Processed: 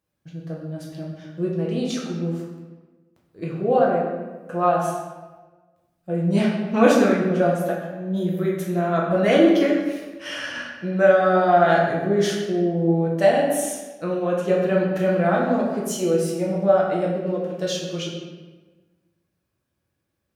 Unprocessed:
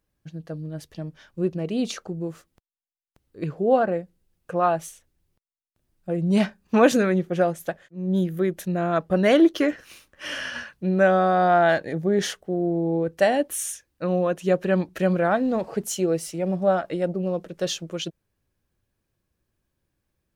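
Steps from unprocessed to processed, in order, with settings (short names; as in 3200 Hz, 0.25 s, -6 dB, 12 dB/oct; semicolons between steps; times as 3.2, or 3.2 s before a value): HPF 80 Hz; reverb RT60 1.3 s, pre-delay 6 ms, DRR -4 dB; gain -3.5 dB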